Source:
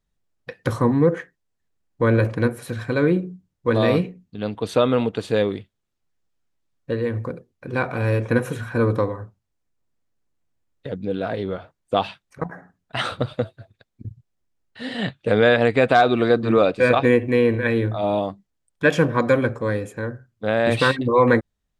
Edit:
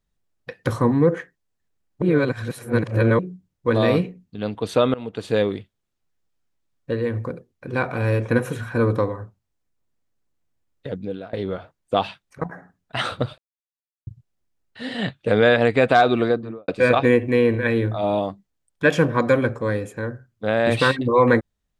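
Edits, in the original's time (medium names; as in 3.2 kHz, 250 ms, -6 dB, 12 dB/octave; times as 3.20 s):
2.02–3.19 s: reverse
4.94–5.33 s: fade in, from -21.5 dB
10.95–11.33 s: fade out, to -22 dB
13.38–14.07 s: mute
16.12–16.68 s: studio fade out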